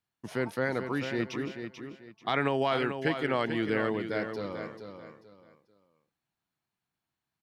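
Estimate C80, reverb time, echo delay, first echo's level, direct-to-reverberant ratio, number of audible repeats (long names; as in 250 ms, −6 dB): no reverb audible, no reverb audible, 439 ms, −8.0 dB, no reverb audible, 3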